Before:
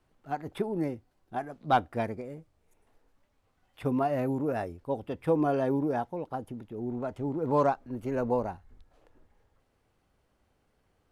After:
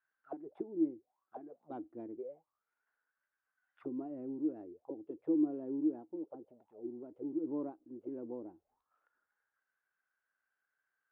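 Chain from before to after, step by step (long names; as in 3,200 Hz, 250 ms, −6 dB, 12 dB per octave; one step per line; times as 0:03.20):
envelope filter 320–1,600 Hz, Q 12, down, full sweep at −30.5 dBFS
level +3 dB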